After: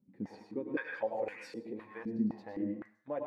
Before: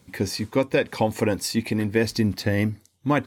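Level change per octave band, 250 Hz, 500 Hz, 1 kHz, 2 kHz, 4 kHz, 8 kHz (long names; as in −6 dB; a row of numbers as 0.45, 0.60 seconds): −12.5 dB, −13.5 dB, −14.5 dB, −14.5 dB, −28.0 dB, below −30 dB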